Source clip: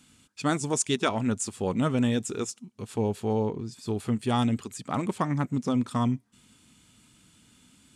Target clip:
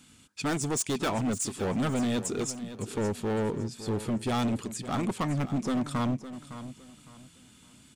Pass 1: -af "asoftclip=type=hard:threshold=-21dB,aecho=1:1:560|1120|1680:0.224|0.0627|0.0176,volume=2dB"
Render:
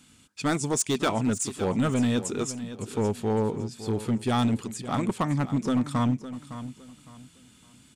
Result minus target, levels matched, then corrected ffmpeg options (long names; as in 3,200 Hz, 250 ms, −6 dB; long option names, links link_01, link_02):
hard clipping: distortion −7 dB
-af "asoftclip=type=hard:threshold=-27.5dB,aecho=1:1:560|1120|1680:0.224|0.0627|0.0176,volume=2dB"